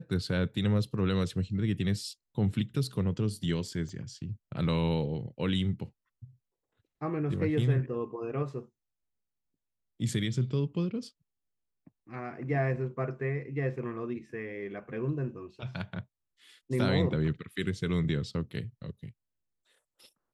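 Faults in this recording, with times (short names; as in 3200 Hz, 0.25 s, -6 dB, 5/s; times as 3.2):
3.89 gap 3.4 ms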